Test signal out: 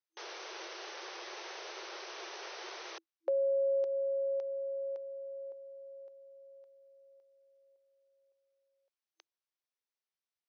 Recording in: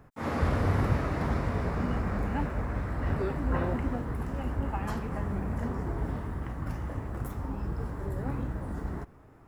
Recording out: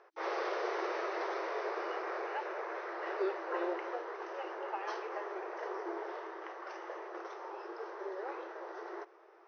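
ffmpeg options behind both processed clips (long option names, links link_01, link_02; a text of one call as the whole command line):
ffmpeg -i in.wav -filter_complex "[0:a]acrossover=split=450|3000[link_01][link_02][link_03];[link_02]acompressor=threshold=-35dB:ratio=6[link_04];[link_01][link_04][link_03]amix=inputs=3:normalize=0,afftfilt=real='re*between(b*sr/4096,330,6300)':imag='im*between(b*sr/4096,330,6300)':win_size=4096:overlap=0.75" out.wav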